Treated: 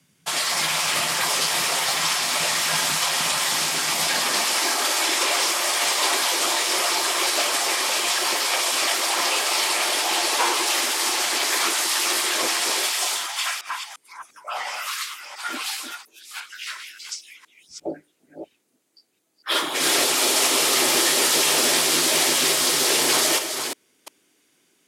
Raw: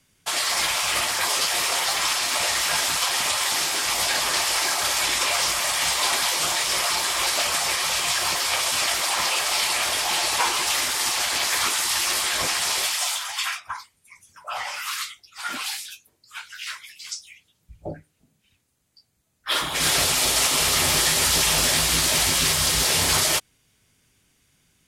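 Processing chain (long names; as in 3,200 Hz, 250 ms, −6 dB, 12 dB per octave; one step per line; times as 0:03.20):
delay that plays each chunk backwards 349 ms, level −7.5 dB
high-pass filter sweep 160 Hz → 330 Hz, 0:03.90–0:05.00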